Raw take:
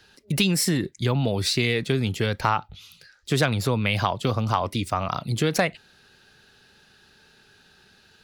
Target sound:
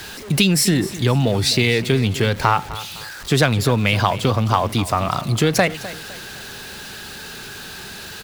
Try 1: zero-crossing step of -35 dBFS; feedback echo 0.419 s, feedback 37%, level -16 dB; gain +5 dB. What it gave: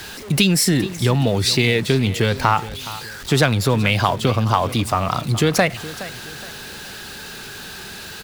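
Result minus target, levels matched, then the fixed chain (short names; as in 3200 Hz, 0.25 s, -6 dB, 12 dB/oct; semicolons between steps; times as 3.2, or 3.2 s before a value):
echo 0.164 s late
zero-crossing step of -35 dBFS; feedback echo 0.255 s, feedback 37%, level -16 dB; gain +5 dB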